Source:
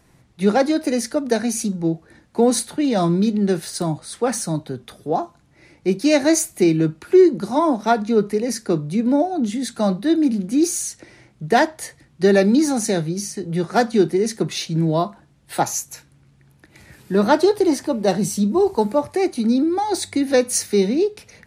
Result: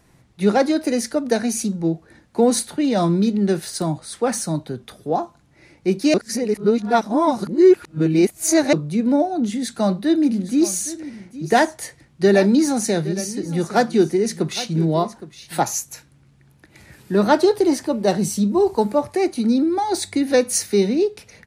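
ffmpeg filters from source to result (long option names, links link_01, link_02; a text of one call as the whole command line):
ffmpeg -i in.wav -filter_complex "[0:a]asplit=3[link_01][link_02][link_03];[link_01]afade=type=out:start_time=10.34:duration=0.02[link_04];[link_02]aecho=1:1:815:0.168,afade=type=in:start_time=10.34:duration=0.02,afade=type=out:start_time=15.59:duration=0.02[link_05];[link_03]afade=type=in:start_time=15.59:duration=0.02[link_06];[link_04][link_05][link_06]amix=inputs=3:normalize=0,asplit=3[link_07][link_08][link_09];[link_07]atrim=end=6.142[link_10];[link_08]atrim=start=6.138:end=8.732,asetpts=PTS-STARTPTS,areverse[link_11];[link_09]atrim=start=8.728[link_12];[link_10][link_11]acrossfade=duration=0.004:curve1=hsin:curve2=hsin[link_13];[link_13][link_12]acrossfade=duration=0.004:curve1=hsin:curve2=hsin" out.wav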